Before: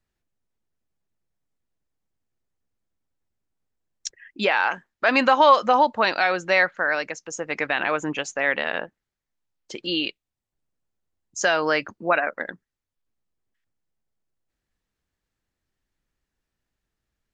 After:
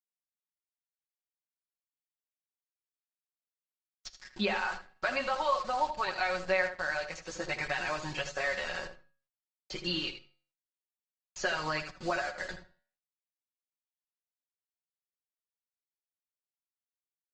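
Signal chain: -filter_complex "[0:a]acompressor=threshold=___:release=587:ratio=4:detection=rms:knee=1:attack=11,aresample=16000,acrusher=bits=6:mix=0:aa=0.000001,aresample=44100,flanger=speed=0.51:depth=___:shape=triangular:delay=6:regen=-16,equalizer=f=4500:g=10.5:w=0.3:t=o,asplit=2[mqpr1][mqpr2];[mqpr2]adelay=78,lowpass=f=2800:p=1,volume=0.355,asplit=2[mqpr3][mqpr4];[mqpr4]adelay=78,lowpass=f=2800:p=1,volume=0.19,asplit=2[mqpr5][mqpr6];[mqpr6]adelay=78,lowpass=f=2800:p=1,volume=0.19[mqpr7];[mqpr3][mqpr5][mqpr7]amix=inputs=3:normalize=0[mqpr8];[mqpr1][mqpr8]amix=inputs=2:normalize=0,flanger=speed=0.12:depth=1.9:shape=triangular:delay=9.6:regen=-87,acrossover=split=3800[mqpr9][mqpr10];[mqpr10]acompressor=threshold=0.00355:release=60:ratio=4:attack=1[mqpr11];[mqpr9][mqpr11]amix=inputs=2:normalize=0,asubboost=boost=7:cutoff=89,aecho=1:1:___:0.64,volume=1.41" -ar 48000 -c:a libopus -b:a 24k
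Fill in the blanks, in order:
0.0708, 6.8, 5.4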